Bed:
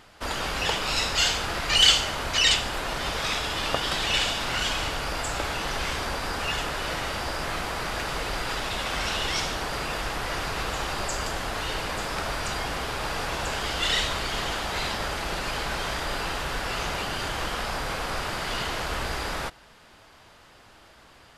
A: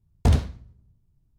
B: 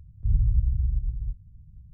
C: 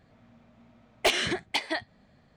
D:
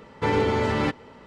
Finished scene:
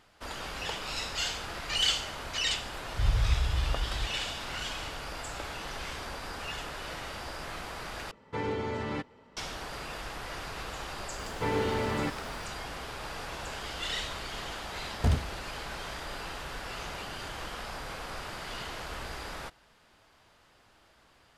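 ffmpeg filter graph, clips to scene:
ffmpeg -i bed.wav -i cue0.wav -i cue1.wav -i cue2.wav -i cue3.wav -filter_complex "[4:a]asplit=2[link_01][link_02];[0:a]volume=-9.5dB[link_03];[link_02]aeval=exprs='val(0)+0.5*0.0119*sgn(val(0))':channel_layout=same[link_04];[1:a]acrusher=bits=10:mix=0:aa=0.000001[link_05];[link_03]asplit=2[link_06][link_07];[link_06]atrim=end=8.114[link_08];[link_01]atrim=end=1.26,asetpts=PTS-STARTPTS,volume=-10.5dB[link_09];[link_07]atrim=start=9.366[link_10];[2:a]atrim=end=1.93,asetpts=PTS-STARTPTS,volume=-4.5dB,afade=type=in:duration=0.004:curve=hsin,afade=type=out:start_time=1.926:duration=0.004:curve=hsin,adelay=2740[link_11];[link_04]atrim=end=1.26,asetpts=PTS-STARTPTS,volume=-8dB,afade=type=in:duration=0.004:curve=hsin,afade=type=out:start_time=1.256:duration=0.004:curve=hsin,adelay=11190[link_12];[link_05]atrim=end=1.38,asetpts=PTS-STARTPTS,volume=-7dB,afade=type=in:duration=0.004:curve=hsin,afade=type=out:start_time=1.376:duration=0.004:curve=hsin,adelay=14790[link_13];[link_08][link_09]acrossfade=duration=0.004:curve1=hsin:curve2=hsin[link_14];[link_14][link_10]acrossfade=duration=0.004:curve1=hsin:curve2=hsin[link_15];[link_15][link_11][link_12][link_13]amix=inputs=4:normalize=0" out.wav

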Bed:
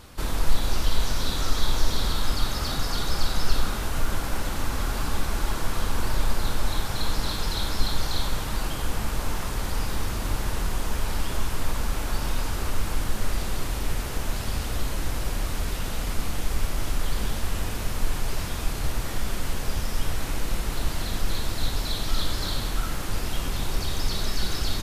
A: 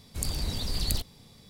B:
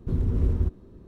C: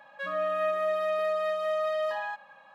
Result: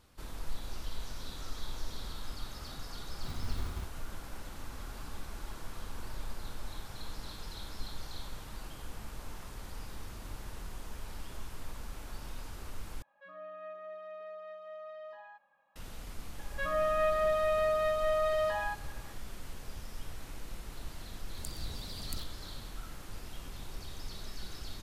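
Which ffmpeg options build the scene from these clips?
ffmpeg -i bed.wav -i cue0.wav -i cue1.wav -i cue2.wav -filter_complex "[3:a]asplit=2[link_01][link_02];[0:a]volume=-16.5dB[link_03];[2:a]acrusher=samples=41:mix=1:aa=0.000001[link_04];[link_01]aemphasis=mode=reproduction:type=75fm[link_05];[1:a]highpass=41[link_06];[link_03]asplit=2[link_07][link_08];[link_07]atrim=end=13.024[link_09];[link_05]atrim=end=2.74,asetpts=PTS-STARTPTS,volume=-17.5dB[link_10];[link_08]atrim=start=15.756[link_11];[link_04]atrim=end=1.07,asetpts=PTS-STARTPTS,volume=-16.5dB,afade=type=in:duration=0.004:curve=hsin,afade=type=out:start_time=1.066:duration=0.004:curve=hsin,adelay=3160[link_12];[link_02]atrim=end=2.74,asetpts=PTS-STARTPTS,volume=-1dB,afade=type=in:duration=0.004:curve=hsin,afade=type=out:start_time=2.736:duration=0.004:curve=hsin,adelay=16390[link_13];[link_06]atrim=end=1.49,asetpts=PTS-STARTPTS,volume=-12dB,afade=type=in:duration=0.004:curve=hsin,afade=type=out:start_time=1.486:duration=0.004:curve=hsin,adelay=21220[link_14];[link_09][link_10]acrossfade=duration=0.004:curve1=hsin:curve2=hsin[link_15];[link_15][link_11]acrossfade=duration=0.004:curve1=hsin:curve2=hsin[link_16];[link_16][link_12][link_13][link_14]amix=inputs=4:normalize=0" out.wav

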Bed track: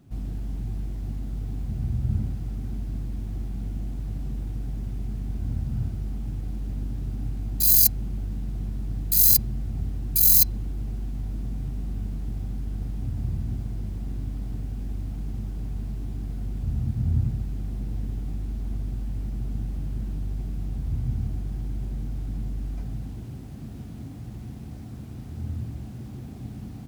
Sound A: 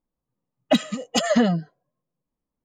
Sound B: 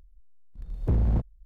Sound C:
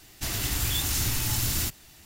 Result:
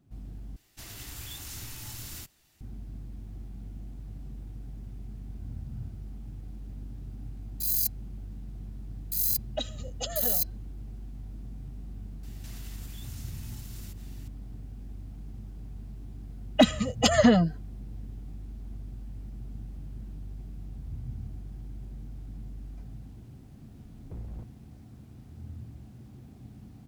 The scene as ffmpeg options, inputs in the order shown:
ffmpeg -i bed.wav -i cue0.wav -i cue1.wav -i cue2.wav -filter_complex "[3:a]asplit=2[link_01][link_02];[1:a]asplit=2[link_03][link_04];[0:a]volume=-10.5dB[link_05];[link_01]acrusher=bits=11:mix=0:aa=0.000001[link_06];[link_03]highpass=420,equalizer=frequency=530:width_type=q:width=4:gain=6,equalizer=frequency=1100:width_type=q:width=4:gain=-8,equalizer=frequency=2100:width_type=q:width=4:gain=-10,equalizer=frequency=3800:width_type=q:width=4:gain=8,equalizer=frequency=6400:width_type=q:width=4:gain=7,lowpass=frequency=8200:width=0.5412,lowpass=frequency=8200:width=1.3066[link_07];[link_02]acompressor=threshold=-41dB:ratio=6:attack=3.2:release=140:knee=1:detection=peak[link_08];[link_05]asplit=2[link_09][link_10];[link_09]atrim=end=0.564[link_11];[link_06]atrim=end=2.05,asetpts=PTS-STARTPTS,volume=-14dB[link_12];[link_10]atrim=start=2.606[link_13];[link_07]atrim=end=2.64,asetpts=PTS-STARTPTS,volume=-14dB,afade=type=in:duration=0.004:curve=hsin,afade=type=out:start_time=2.636:duration=0.004:curve=hsin,adelay=8860[link_14];[link_08]atrim=end=2.05,asetpts=PTS-STARTPTS,volume=-5.5dB,afade=type=in:duration=0.004:curve=hsin,afade=type=out:start_time=2.046:duration=0.004:curve=hsin,adelay=12230[link_15];[link_04]atrim=end=2.64,asetpts=PTS-STARTPTS,volume=-0.5dB,afade=type=in:duration=0.004:curve=hsin,afade=type=out:start_time=2.636:duration=0.004:curve=hsin,adelay=700308S[link_16];[2:a]atrim=end=1.45,asetpts=PTS-STARTPTS,volume=-17.5dB,afade=type=in:duration=0.004:curve=hsin,afade=type=out:start_time=1.446:duration=0.004:curve=hsin,adelay=23230[link_17];[link_11][link_12]acrossfade=duration=0.004:curve1=hsin:curve2=hsin[link_18];[link_18][link_13]acrossfade=duration=0.004:curve1=hsin:curve2=hsin[link_19];[link_19][link_14][link_15][link_16][link_17]amix=inputs=5:normalize=0" out.wav

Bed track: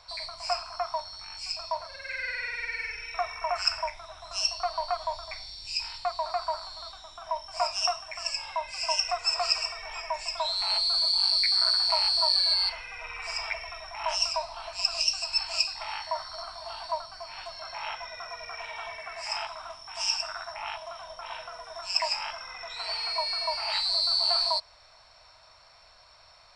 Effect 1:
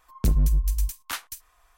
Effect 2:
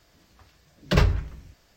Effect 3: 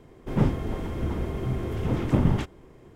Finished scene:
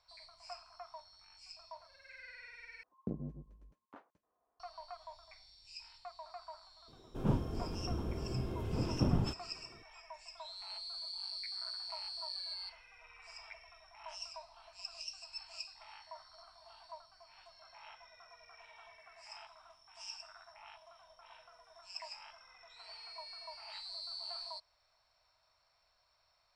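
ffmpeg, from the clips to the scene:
ffmpeg -i bed.wav -i cue0.wav -i cue1.wav -i cue2.wav -filter_complex "[0:a]volume=-19dB[link_01];[1:a]asuperpass=centerf=340:order=4:qfactor=0.73[link_02];[3:a]equalizer=frequency=2000:width=5.2:gain=-15[link_03];[link_01]asplit=2[link_04][link_05];[link_04]atrim=end=2.834[link_06];[link_02]atrim=end=1.77,asetpts=PTS-STARTPTS,volume=-7.5dB[link_07];[link_05]atrim=start=4.596[link_08];[link_03]atrim=end=2.95,asetpts=PTS-STARTPTS,volume=-9.5dB,afade=type=in:duration=0.004:curve=hsin,afade=type=out:start_time=2.946:duration=0.004:curve=hsin,adelay=6880[link_09];[link_06][link_07]acrossfade=duration=0.004:curve1=hsin:curve2=hsin[link_10];[link_10][link_08]acrossfade=duration=0.004:curve1=hsin:curve2=hsin[link_11];[link_11][link_09]amix=inputs=2:normalize=0" out.wav

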